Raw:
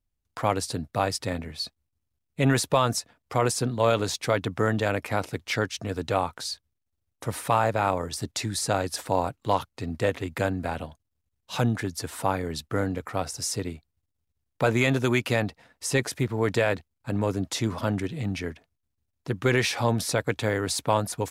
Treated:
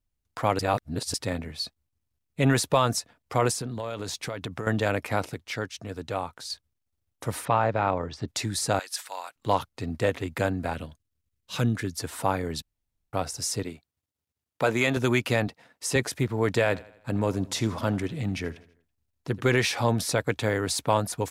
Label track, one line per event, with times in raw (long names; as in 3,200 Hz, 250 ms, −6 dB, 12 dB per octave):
0.590000	1.140000	reverse
3.550000	4.670000	downward compressor, threshold −29 dBFS
5.340000	6.500000	clip gain −5.5 dB
7.450000	8.280000	high-frequency loss of the air 190 metres
8.790000	9.360000	high-pass filter 1,500 Hz
10.730000	11.960000	parametric band 790 Hz −11 dB
12.620000	13.130000	fill with room tone
13.630000	14.970000	high-pass filter 230 Hz 6 dB per octave
15.470000	15.960000	high-pass filter 130 Hz
16.640000	19.510000	repeating echo 82 ms, feedback 50%, level −20 dB